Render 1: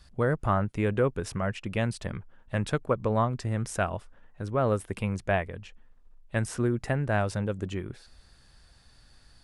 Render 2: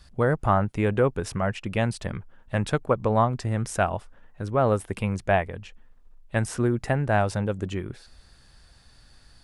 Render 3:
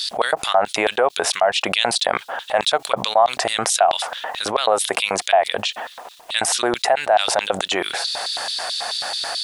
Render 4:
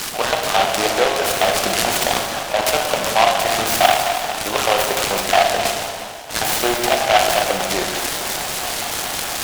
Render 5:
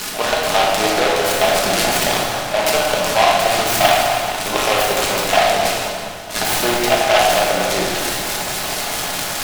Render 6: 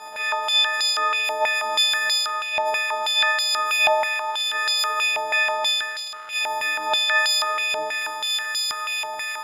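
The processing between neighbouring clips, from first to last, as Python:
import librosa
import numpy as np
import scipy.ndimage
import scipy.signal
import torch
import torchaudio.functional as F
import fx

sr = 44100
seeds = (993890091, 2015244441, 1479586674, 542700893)

y1 = fx.dynamic_eq(x, sr, hz=800.0, q=3.0, threshold_db=-44.0, ratio=4.0, max_db=5)
y1 = y1 * librosa.db_to_amplitude(3.0)
y2 = fx.filter_lfo_highpass(y1, sr, shape='square', hz=4.6, low_hz=710.0, high_hz=3700.0, q=4.6)
y2 = fx.env_flatten(y2, sr, amount_pct=70)
y2 = y2 * librosa.db_to_amplitude(-4.0)
y3 = fx.rev_plate(y2, sr, seeds[0], rt60_s=2.1, hf_ratio=0.95, predelay_ms=0, drr_db=-0.5)
y3 = fx.noise_mod_delay(y3, sr, seeds[1], noise_hz=1900.0, depth_ms=0.11)
y3 = y3 * librosa.db_to_amplitude(-1.5)
y4 = fx.room_shoebox(y3, sr, seeds[2], volume_m3=460.0, walls='mixed', distance_m=1.4)
y4 = y4 * librosa.db_to_amplitude(-1.5)
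y5 = fx.freq_snap(y4, sr, grid_st=6)
y5 = fx.dmg_crackle(y5, sr, seeds[3], per_s=470.0, level_db=-16.0)
y5 = fx.filter_held_bandpass(y5, sr, hz=6.2, low_hz=790.0, high_hz=4300.0)
y5 = y5 * librosa.db_to_amplitude(-3.0)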